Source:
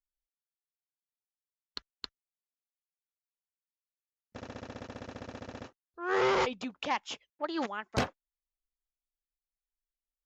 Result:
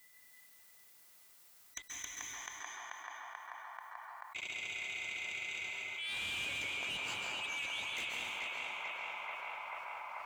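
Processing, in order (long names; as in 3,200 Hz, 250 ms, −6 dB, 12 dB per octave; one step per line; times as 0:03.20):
neighbouring bands swapped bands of 2,000 Hz
first-order pre-emphasis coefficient 0.8
feedback echo with a band-pass in the loop 436 ms, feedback 83%, band-pass 1,000 Hz, level −4.5 dB
soft clipping −39 dBFS, distortion −8 dB
high-shelf EQ 3,200 Hz −10.5 dB
leveller curve on the samples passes 1
high-pass filter 46 Hz
dense smooth reverb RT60 1.3 s, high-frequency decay 0.9×, pre-delay 120 ms, DRR 1 dB
envelope flattener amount 70%
level +2 dB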